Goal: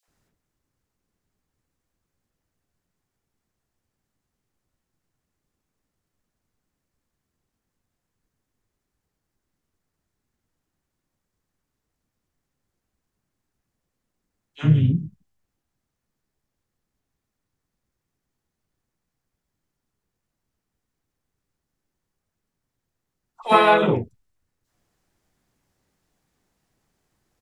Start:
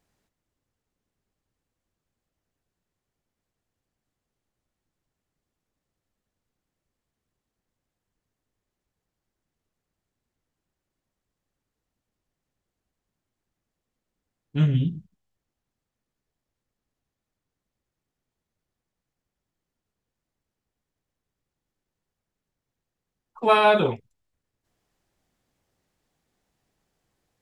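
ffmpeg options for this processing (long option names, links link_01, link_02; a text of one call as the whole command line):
ffmpeg -i in.wav -filter_complex "[0:a]asplit=2[link_01][link_02];[link_02]asetrate=35002,aresample=44100,atempo=1.25992,volume=-8dB[link_03];[link_01][link_03]amix=inputs=2:normalize=0,acrossover=split=570|3200[link_04][link_05][link_06];[link_05]adelay=30[link_07];[link_04]adelay=80[link_08];[link_08][link_07][link_06]amix=inputs=3:normalize=0,volume=3.5dB" out.wav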